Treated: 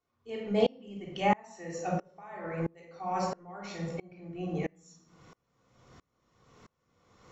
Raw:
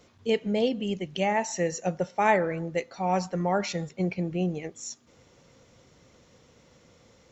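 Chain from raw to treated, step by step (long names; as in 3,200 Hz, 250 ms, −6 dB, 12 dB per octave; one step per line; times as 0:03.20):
parametric band 1,100 Hz +10 dB 0.95 octaves
brickwall limiter −14.5 dBFS, peak gain reduction 11 dB
0:01.99–0:02.61: downward compressor, threshold −26 dBFS, peak gain reduction 7 dB
convolution reverb RT60 0.65 s, pre-delay 3 ms, DRR −2 dB
tremolo with a ramp in dB swelling 1.5 Hz, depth 31 dB
level −2.5 dB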